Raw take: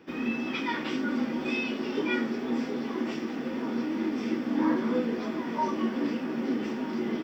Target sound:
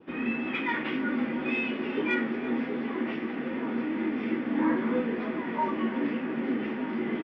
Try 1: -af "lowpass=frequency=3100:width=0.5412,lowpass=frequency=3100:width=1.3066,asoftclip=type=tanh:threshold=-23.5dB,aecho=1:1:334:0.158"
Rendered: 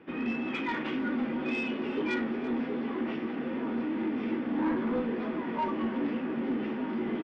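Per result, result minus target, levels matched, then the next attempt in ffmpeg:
soft clipping: distortion +16 dB; 2,000 Hz band −2.5 dB
-af "lowpass=frequency=3100:width=0.5412,lowpass=frequency=3100:width=1.3066,asoftclip=type=tanh:threshold=-12.5dB,aecho=1:1:334:0.158"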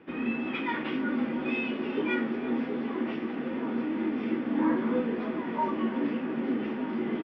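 2,000 Hz band −3.0 dB
-af "lowpass=frequency=3100:width=0.5412,lowpass=frequency=3100:width=1.3066,adynamicequalizer=threshold=0.00282:dfrequency=2000:dqfactor=1.9:tfrequency=2000:tqfactor=1.9:attack=5:release=100:ratio=0.438:range=2.5:mode=boostabove:tftype=bell,asoftclip=type=tanh:threshold=-12.5dB,aecho=1:1:334:0.158"

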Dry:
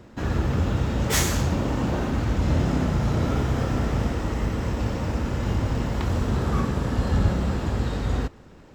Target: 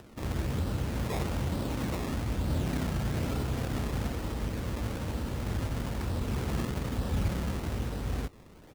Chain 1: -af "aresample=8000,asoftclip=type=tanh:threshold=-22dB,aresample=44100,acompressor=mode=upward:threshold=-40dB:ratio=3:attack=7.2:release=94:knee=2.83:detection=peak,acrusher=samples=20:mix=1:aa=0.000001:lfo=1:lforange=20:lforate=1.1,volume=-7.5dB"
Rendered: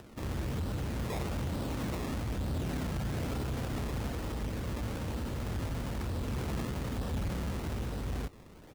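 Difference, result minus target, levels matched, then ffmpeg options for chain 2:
soft clipping: distortion +15 dB
-af "aresample=8000,asoftclip=type=tanh:threshold=-10.5dB,aresample=44100,acompressor=mode=upward:threshold=-40dB:ratio=3:attack=7.2:release=94:knee=2.83:detection=peak,acrusher=samples=20:mix=1:aa=0.000001:lfo=1:lforange=20:lforate=1.1,volume=-7.5dB"

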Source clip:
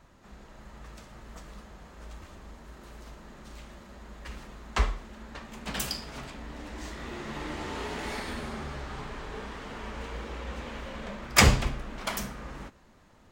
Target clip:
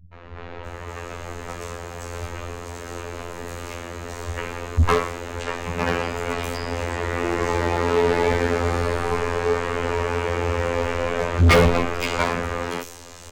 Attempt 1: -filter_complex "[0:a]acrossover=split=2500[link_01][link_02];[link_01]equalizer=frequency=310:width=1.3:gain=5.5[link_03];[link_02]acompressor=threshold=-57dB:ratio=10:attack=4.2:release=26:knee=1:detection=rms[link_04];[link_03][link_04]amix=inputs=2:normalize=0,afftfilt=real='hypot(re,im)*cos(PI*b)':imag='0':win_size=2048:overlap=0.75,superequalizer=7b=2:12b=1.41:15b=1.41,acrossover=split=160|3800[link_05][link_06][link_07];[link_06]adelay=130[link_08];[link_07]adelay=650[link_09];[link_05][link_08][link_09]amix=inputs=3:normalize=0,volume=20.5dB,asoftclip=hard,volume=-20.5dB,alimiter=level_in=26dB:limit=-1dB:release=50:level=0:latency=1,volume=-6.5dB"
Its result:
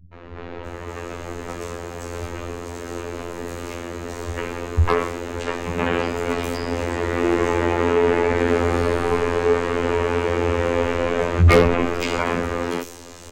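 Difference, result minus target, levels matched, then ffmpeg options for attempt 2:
gain into a clipping stage and back: distortion −7 dB; 250 Hz band +2.5 dB
-filter_complex "[0:a]acrossover=split=2500[link_01][link_02];[link_01]equalizer=frequency=310:width=1.3:gain=-2[link_03];[link_02]acompressor=threshold=-57dB:ratio=10:attack=4.2:release=26:knee=1:detection=rms[link_04];[link_03][link_04]amix=inputs=2:normalize=0,afftfilt=real='hypot(re,im)*cos(PI*b)':imag='0':win_size=2048:overlap=0.75,superequalizer=7b=2:12b=1.41:15b=1.41,acrossover=split=160|3800[link_05][link_06][link_07];[link_06]adelay=130[link_08];[link_07]adelay=650[link_09];[link_05][link_08][link_09]amix=inputs=3:normalize=0,volume=31dB,asoftclip=hard,volume=-31dB,alimiter=level_in=26dB:limit=-1dB:release=50:level=0:latency=1,volume=-6.5dB"

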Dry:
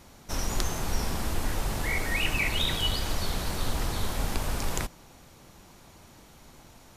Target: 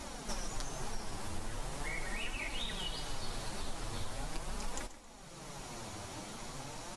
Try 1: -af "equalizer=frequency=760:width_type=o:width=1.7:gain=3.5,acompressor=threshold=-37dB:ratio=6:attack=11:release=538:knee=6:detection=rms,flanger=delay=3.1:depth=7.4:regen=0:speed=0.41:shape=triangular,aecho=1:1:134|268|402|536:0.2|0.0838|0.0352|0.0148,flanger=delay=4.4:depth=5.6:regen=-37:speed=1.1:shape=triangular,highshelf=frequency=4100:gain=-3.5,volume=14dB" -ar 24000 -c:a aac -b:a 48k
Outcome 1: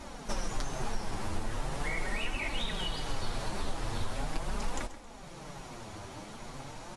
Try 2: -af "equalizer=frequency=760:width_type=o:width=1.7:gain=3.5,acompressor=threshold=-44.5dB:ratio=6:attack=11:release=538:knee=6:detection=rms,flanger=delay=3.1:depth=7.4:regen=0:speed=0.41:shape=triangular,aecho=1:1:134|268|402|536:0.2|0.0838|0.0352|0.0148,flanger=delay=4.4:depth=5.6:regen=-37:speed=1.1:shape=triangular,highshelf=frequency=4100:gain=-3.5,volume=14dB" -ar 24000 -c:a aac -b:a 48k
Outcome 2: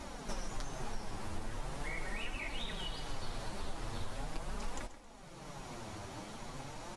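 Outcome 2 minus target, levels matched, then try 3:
8,000 Hz band −4.0 dB
-af "equalizer=frequency=760:width_type=o:width=1.7:gain=3.5,acompressor=threshold=-44.5dB:ratio=6:attack=11:release=538:knee=6:detection=rms,flanger=delay=3.1:depth=7.4:regen=0:speed=0.41:shape=triangular,aecho=1:1:134|268|402|536:0.2|0.0838|0.0352|0.0148,flanger=delay=4.4:depth=5.6:regen=-37:speed=1.1:shape=triangular,highshelf=frequency=4100:gain=4.5,volume=14dB" -ar 24000 -c:a aac -b:a 48k

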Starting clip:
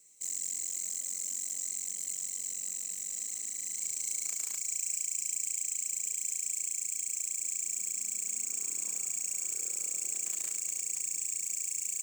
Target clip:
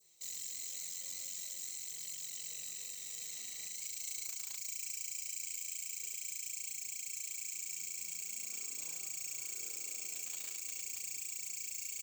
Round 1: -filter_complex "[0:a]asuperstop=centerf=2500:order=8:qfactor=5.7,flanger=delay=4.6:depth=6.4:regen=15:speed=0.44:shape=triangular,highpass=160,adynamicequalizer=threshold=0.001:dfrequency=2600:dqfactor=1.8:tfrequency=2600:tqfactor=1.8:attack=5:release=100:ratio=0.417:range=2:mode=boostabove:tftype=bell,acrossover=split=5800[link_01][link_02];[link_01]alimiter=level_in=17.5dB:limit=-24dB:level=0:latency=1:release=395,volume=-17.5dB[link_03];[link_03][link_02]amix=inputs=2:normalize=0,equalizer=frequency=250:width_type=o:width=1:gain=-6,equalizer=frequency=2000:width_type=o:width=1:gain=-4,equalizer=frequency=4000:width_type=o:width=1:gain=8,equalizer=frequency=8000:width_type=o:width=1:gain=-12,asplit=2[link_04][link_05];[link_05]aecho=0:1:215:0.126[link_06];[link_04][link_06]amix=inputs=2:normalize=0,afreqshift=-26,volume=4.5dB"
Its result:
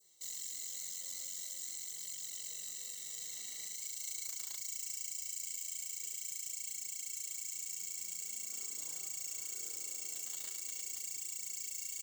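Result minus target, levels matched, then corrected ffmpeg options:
2,000 Hz band −4.0 dB; 125 Hz band −2.5 dB
-filter_complex "[0:a]asuperstop=centerf=9800:order=8:qfactor=5.7,flanger=delay=4.6:depth=6.4:regen=15:speed=0.44:shape=triangular,adynamicequalizer=threshold=0.001:dfrequency=2600:dqfactor=1.8:tfrequency=2600:tqfactor=1.8:attack=5:release=100:ratio=0.417:range=2:mode=boostabove:tftype=bell,acrossover=split=5800[link_01][link_02];[link_01]alimiter=level_in=17.5dB:limit=-24dB:level=0:latency=1:release=395,volume=-17.5dB[link_03];[link_03][link_02]amix=inputs=2:normalize=0,equalizer=frequency=250:width_type=o:width=1:gain=-6,equalizer=frequency=2000:width_type=o:width=1:gain=-4,equalizer=frequency=4000:width_type=o:width=1:gain=8,equalizer=frequency=8000:width_type=o:width=1:gain=-12,asplit=2[link_04][link_05];[link_05]aecho=0:1:215:0.126[link_06];[link_04][link_06]amix=inputs=2:normalize=0,afreqshift=-26,volume=4.5dB"

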